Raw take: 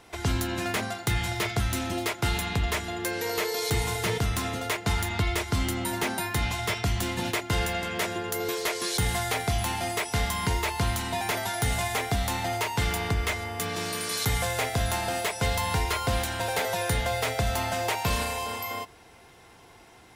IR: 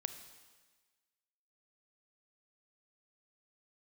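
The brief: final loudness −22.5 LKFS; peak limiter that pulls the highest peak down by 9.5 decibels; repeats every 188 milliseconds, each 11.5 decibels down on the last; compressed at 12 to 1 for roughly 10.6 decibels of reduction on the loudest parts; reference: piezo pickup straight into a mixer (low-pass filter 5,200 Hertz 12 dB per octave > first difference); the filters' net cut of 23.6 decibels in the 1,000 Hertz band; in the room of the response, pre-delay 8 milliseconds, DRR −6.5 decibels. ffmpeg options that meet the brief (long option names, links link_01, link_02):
-filter_complex "[0:a]equalizer=frequency=1000:width_type=o:gain=-8.5,acompressor=threshold=-33dB:ratio=12,alimiter=level_in=3.5dB:limit=-24dB:level=0:latency=1,volume=-3.5dB,aecho=1:1:188|376|564:0.266|0.0718|0.0194,asplit=2[link_01][link_02];[1:a]atrim=start_sample=2205,adelay=8[link_03];[link_02][link_03]afir=irnorm=-1:irlink=0,volume=7.5dB[link_04];[link_01][link_04]amix=inputs=2:normalize=0,lowpass=5200,aderivative,volume=18dB"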